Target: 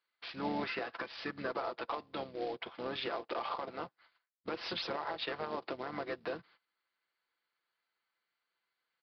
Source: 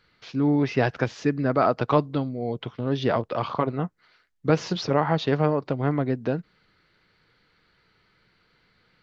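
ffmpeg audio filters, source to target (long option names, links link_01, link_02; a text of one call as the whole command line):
ffmpeg -i in.wav -filter_complex "[0:a]highpass=650,agate=range=-20dB:threshold=-57dB:ratio=16:detection=peak,aecho=1:1:5.9:0.44,acompressor=threshold=-28dB:ratio=8,asplit=4[link_01][link_02][link_03][link_04];[link_02]asetrate=22050,aresample=44100,atempo=2,volume=-15dB[link_05];[link_03]asetrate=29433,aresample=44100,atempo=1.49831,volume=-10dB[link_06];[link_04]asetrate=33038,aresample=44100,atempo=1.33484,volume=-8dB[link_07];[link_01][link_05][link_06][link_07]amix=inputs=4:normalize=0,aresample=16000,acrusher=bits=3:mode=log:mix=0:aa=0.000001,aresample=44100,alimiter=level_in=0.5dB:limit=-24dB:level=0:latency=1:release=102,volume=-0.5dB,aresample=11025,aresample=44100,volume=-2.5dB" out.wav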